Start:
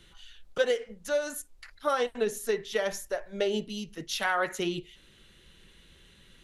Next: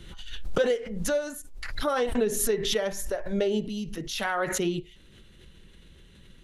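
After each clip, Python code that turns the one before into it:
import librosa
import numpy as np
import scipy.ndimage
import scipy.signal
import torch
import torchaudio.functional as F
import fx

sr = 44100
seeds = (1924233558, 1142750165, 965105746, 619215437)

y = fx.low_shelf(x, sr, hz=480.0, db=9.0)
y = fx.pre_swell(y, sr, db_per_s=44.0)
y = y * 10.0 ** (-3.0 / 20.0)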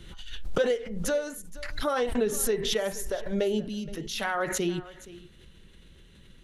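y = x + 10.0 ** (-18.5 / 20.0) * np.pad(x, (int(471 * sr / 1000.0), 0))[:len(x)]
y = y * 10.0 ** (-1.0 / 20.0)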